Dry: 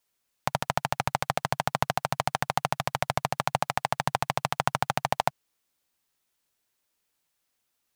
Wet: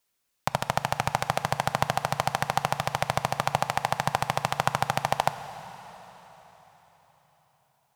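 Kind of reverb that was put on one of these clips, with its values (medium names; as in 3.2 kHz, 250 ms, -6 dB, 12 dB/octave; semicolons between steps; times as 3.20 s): plate-style reverb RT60 4.5 s, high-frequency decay 0.95×, DRR 11 dB; trim +1 dB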